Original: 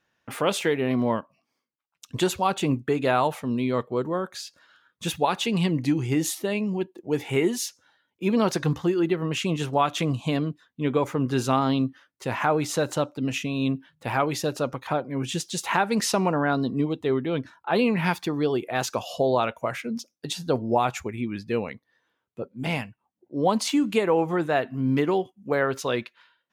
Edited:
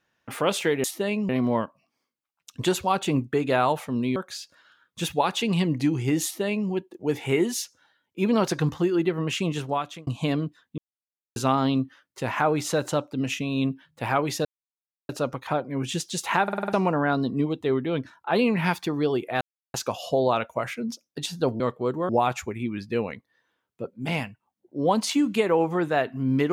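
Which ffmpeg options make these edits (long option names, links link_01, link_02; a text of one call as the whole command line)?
ffmpeg -i in.wav -filter_complex "[0:a]asplit=17[link_01][link_02][link_03][link_04][link_05][link_06][link_07][link_08][link_09][link_10][link_11][link_12][link_13][link_14][link_15][link_16][link_17];[link_01]atrim=end=0.842[link_18];[link_02]atrim=start=6.278:end=6.732[link_19];[link_03]atrim=start=0.838:end=3.712[link_20];[link_04]atrim=start=4.198:end=10.11,asetpts=PTS-STARTPTS,afade=type=out:start_time=5.122:duration=0.79:curve=qsin[link_21];[link_05]atrim=start=10.11:end=10.82,asetpts=PTS-STARTPTS,afade=type=in:duration=0.004:curve=hsin,afade=type=out:start_time=0.706:duration=0.004:curve=hsin[link_22];[link_06]atrim=start=10.82:end=11.4,asetpts=PTS-STARTPTS,volume=0[link_23];[link_07]atrim=start=11.4:end=14.49,asetpts=PTS-STARTPTS,afade=type=in:duration=0.004:curve=hsin,afade=type=out:start_time=3.086:duration=0.004:curve=hsin,apad=pad_dur=0.64[link_24];[link_08]atrim=start=14.49:end=15.882,asetpts=PTS-STARTPTS,afade=type=in:duration=0.004:curve=hsin[link_25];[link_09]atrim=start=15.828:end=15.882[link_26];[link_10]atrim=start=15.828:end=15.882[link_27];[link_11]atrim=start=15.828:end=15.882[link_28];[link_12]atrim=start=15.828:end=15.882[link_29];[link_13]atrim=start=15.828:end=15.882[link_30];[link_14]atrim=start=16.128:end=18.81,asetpts=PTS-STARTPTS,afade=type=out:start_time=2.678:duration=0.004:curve=hsin,apad=pad_dur=0.33[link_31];[link_15]atrim=start=18.81:end=20.672,asetpts=PTS-STARTPTS,afade=type=in:duration=0.004:curve=hsin[link_32];[link_16]atrim=start=3.708:end=4.202[link_33];[link_17]atrim=start=20.668[link_34];[link_18][link_19]acrossfade=duration=0.004:curve1=hsin:curve2=hsin[link_35];[link_35][link_20]acrossfade=duration=0.004:curve1=hsin:curve2=hsin[link_36];[link_21][link_22][link_23][link_24][link_25]concat=n=5:v=0:a=1[link_37];[link_36][link_37]acrossfade=duration=0.004:curve1=hsin:curve2=hsin[link_38];[link_38][link_26]acrossfade=duration=0.004:curve1=hsin:curve2=hsin[link_39];[link_39][link_27]acrossfade=duration=0.004:curve1=hsin:curve2=hsin[link_40];[link_40][link_28]acrossfade=duration=0.004:curve1=hsin:curve2=hsin[link_41];[link_41][link_29]acrossfade=duration=0.004:curve1=hsin:curve2=hsin[link_42];[link_42][link_30]acrossfade=duration=0.004:curve1=hsin:curve2=hsin[link_43];[link_31][link_32]concat=n=2:v=0:a=1[link_44];[link_43][link_44]acrossfade=duration=0.004:curve1=hsin:curve2=hsin[link_45];[link_45][link_33]acrossfade=duration=0.004:curve1=hsin:curve2=hsin[link_46];[link_46][link_34]acrossfade=duration=0.004:curve1=hsin:curve2=hsin" out.wav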